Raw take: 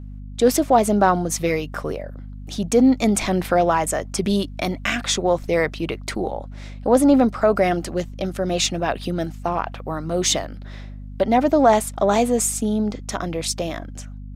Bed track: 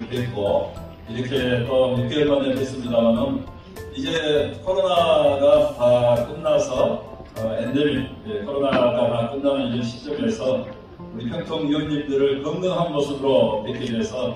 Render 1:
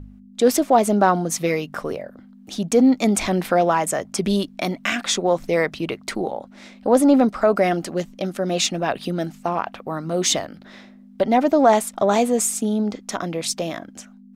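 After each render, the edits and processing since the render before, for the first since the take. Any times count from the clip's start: de-hum 50 Hz, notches 3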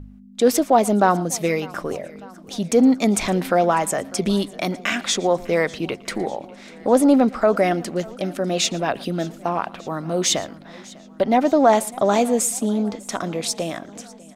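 echo 0.115 s -22.5 dB; warbling echo 0.599 s, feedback 62%, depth 50 cents, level -22.5 dB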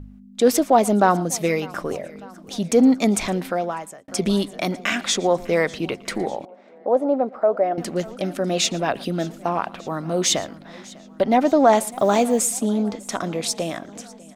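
3.04–4.08 fade out; 6.45–7.78 band-pass 610 Hz, Q 1.7; 11.91–12.59 block floating point 7-bit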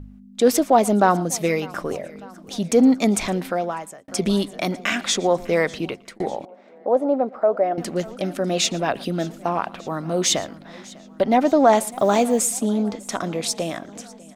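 5.8–6.2 fade out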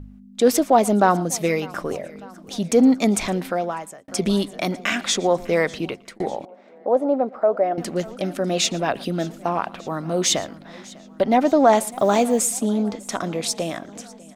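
nothing audible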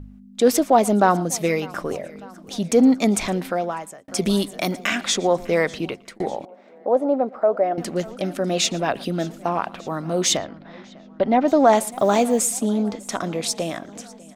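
4.16–4.87 high shelf 7800 Hz +10 dB; 10.37–11.48 air absorption 190 m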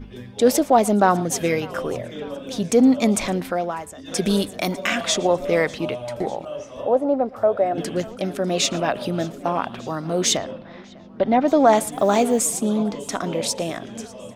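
add bed track -14 dB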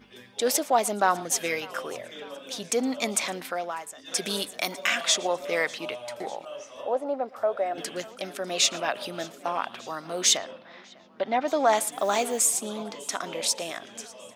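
HPF 1300 Hz 6 dB/oct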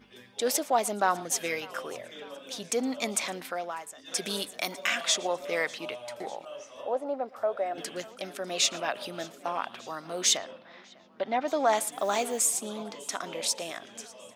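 gain -3 dB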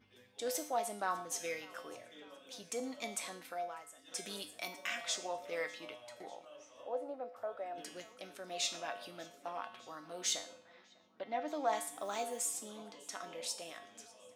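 resonator 100 Hz, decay 0.49 s, harmonics odd, mix 80%

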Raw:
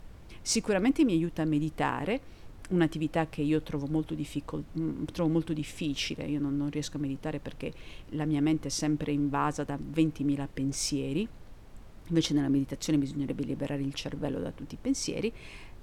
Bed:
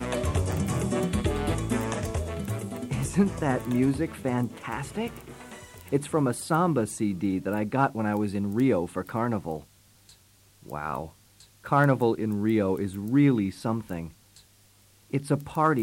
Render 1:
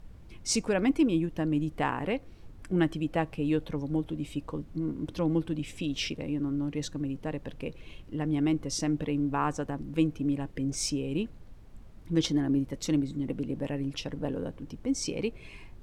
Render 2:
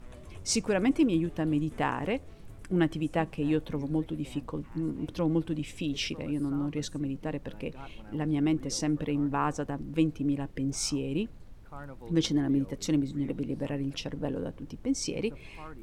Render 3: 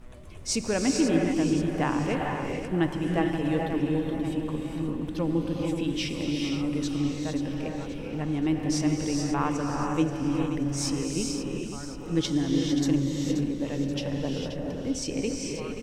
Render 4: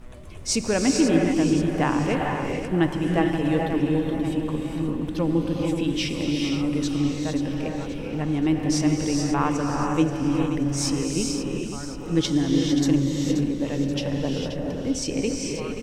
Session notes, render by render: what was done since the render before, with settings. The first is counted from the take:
denoiser 6 dB, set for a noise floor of -49 dBFS
add bed -23.5 dB
on a send: feedback echo 0.53 s, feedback 48%, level -10 dB; on the sum: non-linear reverb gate 0.48 s rising, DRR 1 dB
gain +4 dB

